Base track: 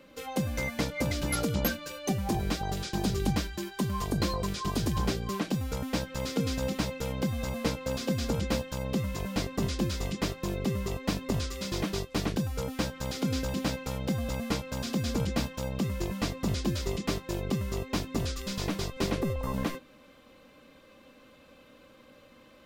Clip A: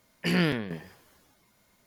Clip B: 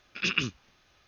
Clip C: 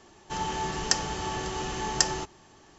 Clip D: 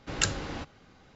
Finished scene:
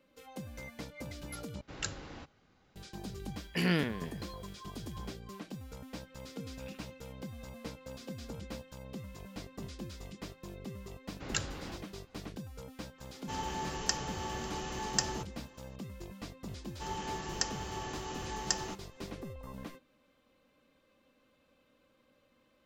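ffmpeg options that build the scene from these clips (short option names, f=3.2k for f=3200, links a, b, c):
-filter_complex "[4:a]asplit=2[a][b];[3:a]asplit=2[c][d];[0:a]volume=-14dB[e];[1:a]aeval=exprs='val(0)+0.00141*sin(2*PI*3300*n/s)':c=same[f];[2:a]acompressor=threshold=-37dB:ratio=6:attack=3.2:release=140:knee=1:detection=peak[g];[e]asplit=2[h][i];[h]atrim=end=1.614[j];[a]atrim=end=1.15,asetpts=PTS-STARTPTS,volume=-10.5dB[k];[i]atrim=start=2.756[l];[f]atrim=end=1.86,asetpts=PTS-STARTPTS,volume=-4.5dB,afade=t=in:d=0.004:c=hsin,afade=t=out:st=1.856:d=0.004:c=hsin,adelay=3310[m];[g]atrim=end=1.07,asetpts=PTS-STARTPTS,volume=-16.5dB,afade=t=in:d=0.004:c=hsin,afade=t=out:st=1.066:d=0.004:c=hsin,adelay=6440[n];[b]atrim=end=1.15,asetpts=PTS-STARTPTS,volume=-7.5dB,afade=t=in:d=0.004:c=hsin,afade=t=out:st=1.146:d=0.004:c=hsin,adelay=11130[o];[c]atrim=end=2.78,asetpts=PTS-STARTPTS,volume=-7dB,afade=t=in:d=0.004:c=hsin,afade=t=out:st=2.776:d=0.004:c=hsin,adelay=12980[p];[d]atrim=end=2.78,asetpts=PTS-STARTPTS,volume=-8.5dB,afade=t=in:d=0.004:c=hsin,afade=t=out:st=2.776:d=0.004:c=hsin,adelay=16500[q];[j][k]acrossfade=d=0.004:c1=hsin:c2=hsin[r];[r][l]acrossfade=d=0.004:c1=hsin:c2=hsin[s];[s][m][n][o][p][q]amix=inputs=6:normalize=0"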